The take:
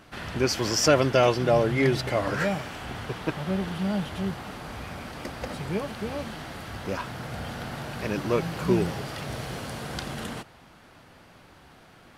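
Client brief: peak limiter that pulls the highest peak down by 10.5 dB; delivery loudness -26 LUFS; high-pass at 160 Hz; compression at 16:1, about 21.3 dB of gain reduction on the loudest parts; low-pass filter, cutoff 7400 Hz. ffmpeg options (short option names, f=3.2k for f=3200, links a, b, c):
-af "highpass=160,lowpass=7.4k,acompressor=threshold=-37dB:ratio=16,volume=18.5dB,alimiter=limit=-16.5dB:level=0:latency=1"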